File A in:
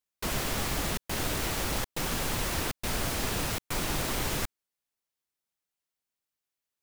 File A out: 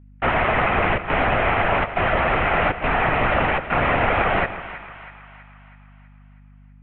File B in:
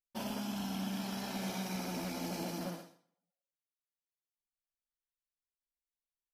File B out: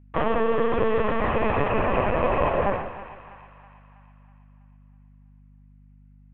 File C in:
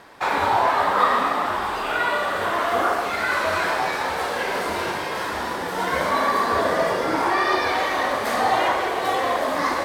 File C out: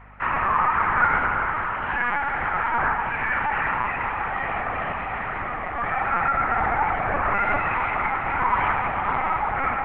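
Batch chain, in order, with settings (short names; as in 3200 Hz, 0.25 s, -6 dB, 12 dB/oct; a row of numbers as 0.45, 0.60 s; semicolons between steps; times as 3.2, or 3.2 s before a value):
mistuned SSB +240 Hz 210–2300 Hz; LPC vocoder at 8 kHz pitch kept; hum 50 Hz, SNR 25 dB; split-band echo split 860 Hz, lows 0.153 s, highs 0.324 s, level -13 dB; normalise peaks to -6 dBFS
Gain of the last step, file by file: +16.0, +19.0, -1.5 dB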